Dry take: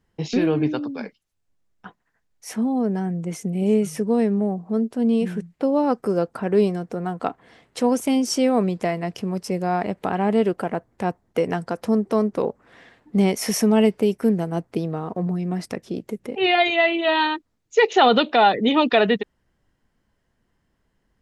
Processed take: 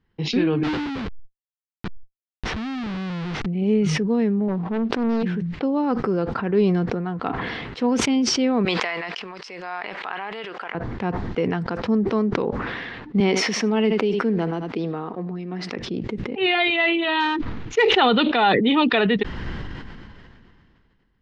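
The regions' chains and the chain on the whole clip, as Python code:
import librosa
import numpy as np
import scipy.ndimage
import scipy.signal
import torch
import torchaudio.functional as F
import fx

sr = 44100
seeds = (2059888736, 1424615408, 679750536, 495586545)

y = fx.chain(x, sr, fx.schmitt(flips_db=-35.5),
    fx.pre_swell(db_per_s=20.0), at=(0.63, 3.46))
y = fx.chain(y, sr, fx.low_shelf(hz=170.0, db=-6.5),
    fx.leveller(passes=1),
    fx.doppler_dist(depth_ms=0.54), at=(4.48, 5.23))
y = fx.chain(y, sr, fx.highpass(hz=980.0, slope=12),
    fx.pre_swell(db_per_s=39.0), at=(8.65, 10.75))
y = fx.chain(y, sr, fx.highpass(hz=250.0, slope=12),
    fx.echo_single(ms=77, db=-19.0), at=(13.2, 15.79))
y = fx.chain(y, sr, fx.median_filter(points=9),
    fx.sustainer(db_per_s=140.0), at=(17.2, 17.98))
y = scipy.signal.sosfilt(scipy.signal.butter(4, 4300.0, 'lowpass', fs=sr, output='sos'), y)
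y = fx.peak_eq(y, sr, hz=620.0, db=-8.0, octaves=0.64)
y = fx.sustainer(y, sr, db_per_s=25.0)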